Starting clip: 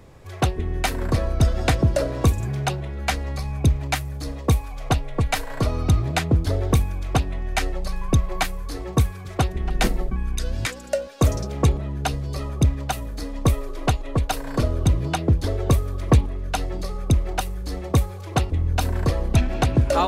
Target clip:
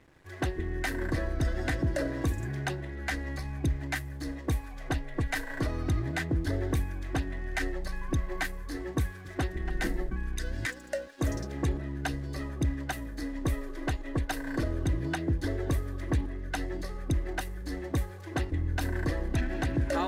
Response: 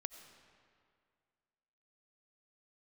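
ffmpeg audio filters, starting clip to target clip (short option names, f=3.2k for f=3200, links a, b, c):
-af "superequalizer=6b=2.51:11b=3.16,alimiter=limit=-12dB:level=0:latency=1:release=25,aeval=exprs='sgn(val(0))*max(abs(val(0))-0.00398,0)':c=same,volume=-8dB"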